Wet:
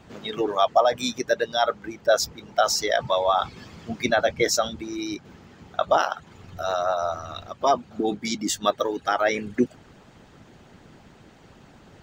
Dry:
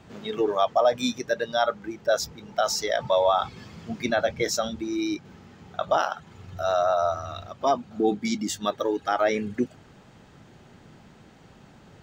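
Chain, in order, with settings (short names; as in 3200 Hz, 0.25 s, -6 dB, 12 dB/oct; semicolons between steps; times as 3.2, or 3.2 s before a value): harmonic-percussive split harmonic -9 dB; gain +5 dB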